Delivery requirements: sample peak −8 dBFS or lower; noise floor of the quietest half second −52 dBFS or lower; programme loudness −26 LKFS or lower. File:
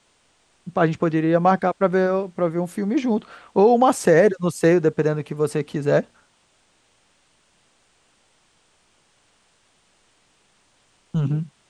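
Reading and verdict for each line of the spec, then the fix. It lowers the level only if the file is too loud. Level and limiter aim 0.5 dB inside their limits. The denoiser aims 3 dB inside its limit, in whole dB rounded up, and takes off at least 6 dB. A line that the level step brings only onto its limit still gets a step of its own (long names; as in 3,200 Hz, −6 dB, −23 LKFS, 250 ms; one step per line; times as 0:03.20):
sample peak −5.0 dBFS: out of spec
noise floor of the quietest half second −62 dBFS: in spec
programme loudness −20.5 LKFS: out of spec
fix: level −6 dB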